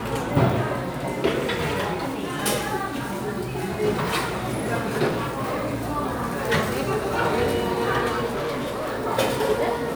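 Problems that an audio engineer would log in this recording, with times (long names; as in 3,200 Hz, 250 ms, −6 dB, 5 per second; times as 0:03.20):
0:05.07–0:05.71: clipping −22 dBFS
0:08.27–0:09.06: clipping −24 dBFS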